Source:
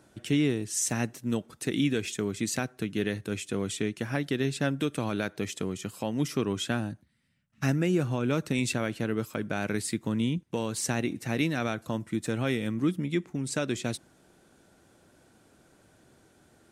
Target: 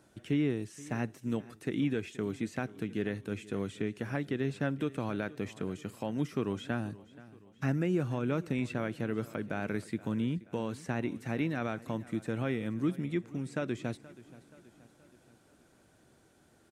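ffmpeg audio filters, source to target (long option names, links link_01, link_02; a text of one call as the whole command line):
ffmpeg -i in.wav -filter_complex "[0:a]acrossover=split=2500[link_01][link_02];[link_02]acompressor=threshold=-50dB:ratio=4:attack=1:release=60[link_03];[link_01][link_03]amix=inputs=2:normalize=0,aecho=1:1:477|954|1431|1908:0.106|0.0561|0.0298|0.0158,volume=-4dB" out.wav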